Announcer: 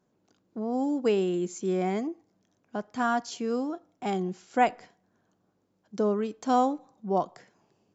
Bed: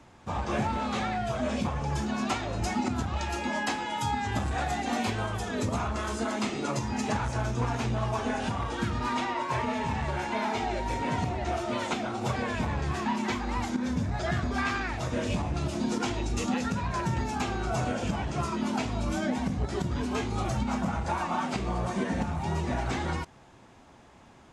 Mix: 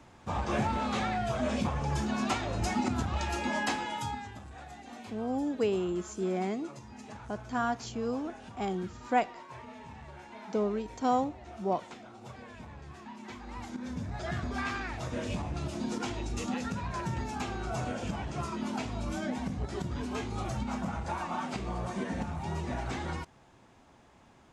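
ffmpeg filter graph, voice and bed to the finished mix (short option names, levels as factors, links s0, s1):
-filter_complex "[0:a]adelay=4550,volume=0.631[s0];[1:a]volume=3.55,afade=t=out:st=3.75:d=0.6:silence=0.158489,afade=t=in:st=13.15:d=1.33:silence=0.251189[s1];[s0][s1]amix=inputs=2:normalize=0"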